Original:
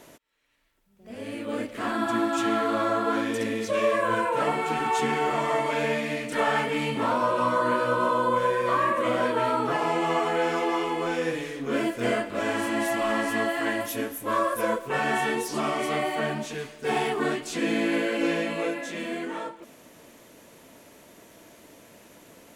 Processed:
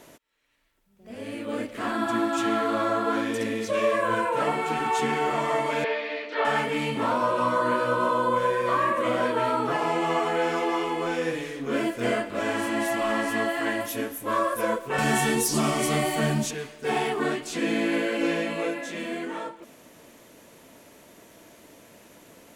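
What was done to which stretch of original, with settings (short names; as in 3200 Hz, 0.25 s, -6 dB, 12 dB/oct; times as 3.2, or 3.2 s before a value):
5.84–6.45 elliptic band-pass 360–4400 Hz
14.98–16.51 tone controls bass +12 dB, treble +12 dB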